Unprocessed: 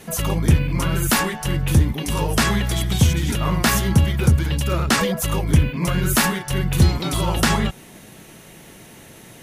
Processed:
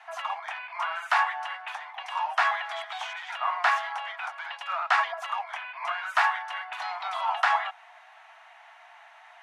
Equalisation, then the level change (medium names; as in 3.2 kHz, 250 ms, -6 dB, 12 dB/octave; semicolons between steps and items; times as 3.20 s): steep high-pass 680 Hz 96 dB/octave; low-pass 1.7 kHz 12 dB/octave; +1.5 dB